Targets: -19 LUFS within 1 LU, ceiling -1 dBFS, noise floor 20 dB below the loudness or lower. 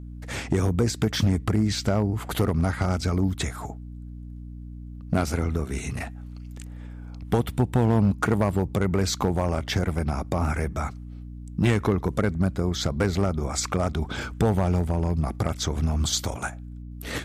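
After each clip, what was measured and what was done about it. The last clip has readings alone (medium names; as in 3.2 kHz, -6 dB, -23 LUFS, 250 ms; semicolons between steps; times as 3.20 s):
clipped samples 0.8%; clipping level -14.0 dBFS; hum 60 Hz; highest harmonic 300 Hz; hum level -36 dBFS; loudness -25.5 LUFS; peak level -14.0 dBFS; loudness target -19.0 LUFS
-> clip repair -14 dBFS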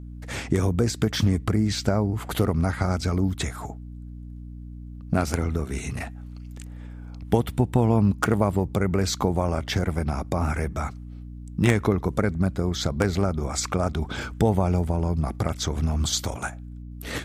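clipped samples 0.0%; hum 60 Hz; highest harmonic 300 Hz; hum level -35 dBFS
-> hum notches 60/120/180/240/300 Hz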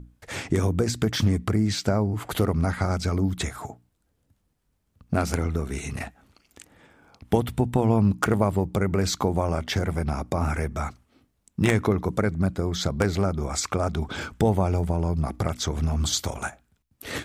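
hum not found; loudness -25.5 LUFS; peak level -5.0 dBFS; loudness target -19.0 LUFS
-> trim +6.5 dB; peak limiter -1 dBFS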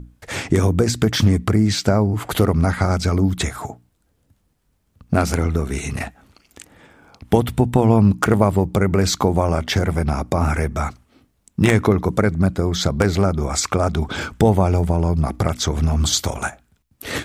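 loudness -19.0 LUFS; peak level -1.0 dBFS; noise floor -65 dBFS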